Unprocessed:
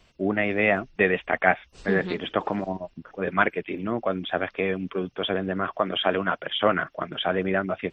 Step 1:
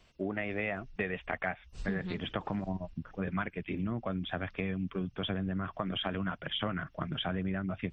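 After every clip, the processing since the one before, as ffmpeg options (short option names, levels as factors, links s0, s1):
-af "asubboost=boost=8:cutoff=160,acompressor=threshold=0.0501:ratio=6,volume=0.596"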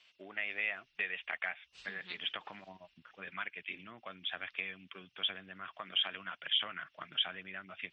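-af "bandpass=f=3000:t=q:w=1.6:csg=0,volume=1.88"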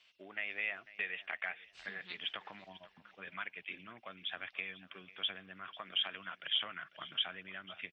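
-af "aecho=1:1:496|992|1488:0.126|0.0365|0.0106,volume=0.794"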